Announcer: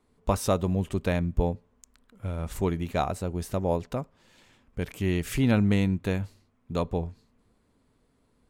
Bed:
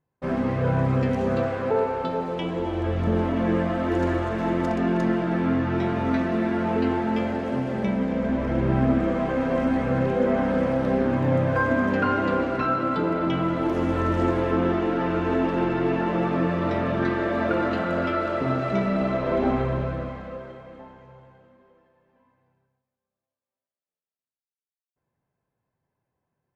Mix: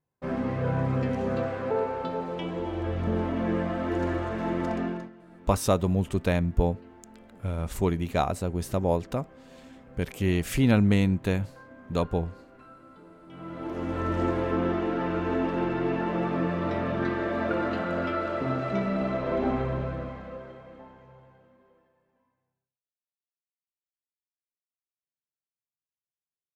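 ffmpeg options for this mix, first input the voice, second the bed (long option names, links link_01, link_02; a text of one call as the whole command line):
ffmpeg -i stem1.wav -i stem2.wav -filter_complex "[0:a]adelay=5200,volume=1.5dB[link_01];[1:a]volume=18.5dB,afade=type=out:start_time=4.77:duration=0.33:silence=0.0749894,afade=type=in:start_time=13.27:duration=0.91:silence=0.0707946,afade=type=out:start_time=21.75:duration=1.03:silence=0.0473151[link_02];[link_01][link_02]amix=inputs=2:normalize=0" out.wav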